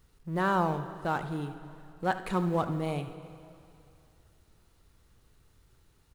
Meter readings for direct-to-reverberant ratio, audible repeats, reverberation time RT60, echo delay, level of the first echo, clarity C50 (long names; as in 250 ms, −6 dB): 9.0 dB, 1, 2.6 s, 74 ms, −14.5 dB, 10.0 dB